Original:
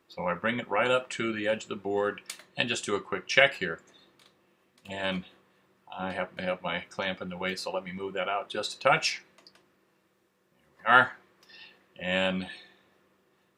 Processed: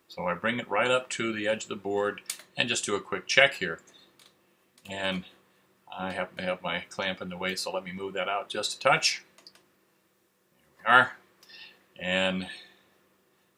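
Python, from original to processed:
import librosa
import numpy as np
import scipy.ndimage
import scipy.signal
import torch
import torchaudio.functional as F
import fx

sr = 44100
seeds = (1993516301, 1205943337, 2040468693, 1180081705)

y = fx.high_shelf(x, sr, hz=5500.0, db=9.5)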